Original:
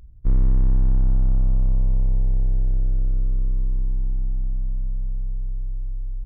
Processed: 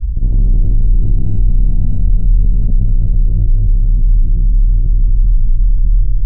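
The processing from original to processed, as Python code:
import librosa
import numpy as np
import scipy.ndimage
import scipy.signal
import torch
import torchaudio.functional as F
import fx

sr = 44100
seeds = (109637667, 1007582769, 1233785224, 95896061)

p1 = scipy.signal.sosfilt(scipy.signal.butter(6, 620.0, 'lowpass', fs=sr, output='sos'), x)
p2 = fx.low_shelf(p1, sr, hz=110.0, db=10.5)
p3 = fx.rider(p2, sr, range_db=10, speed_s=0.5)
p4 = p2 + (p3 * librosa.db_to_amplitude(2.5))
p5 = 10.0 ** (-3.0 / 20.0) * np.tanh(p4 / 10.0 ** (-3.0 / 20.0))
p6 = fx.granulator(p5, sr, seeds[0], grain_ms=100.0, per_s=20.0, spray_ms=100.0, spread_st=0)
p7 = p6 + fx.echo_feedback(p6, sr, ms=81, feedback_pct=58, wet_db=-5.5, dry=0)
p8 = fx.rev_schroeder(p7, sr, rt60_s=3.4, comb_ms=26, drr_db=3.0)
p9 = fx.env_flatten(p8, sr, amount_pct=70)
y = p9 * librosa.db_to_amplitude(-8.5)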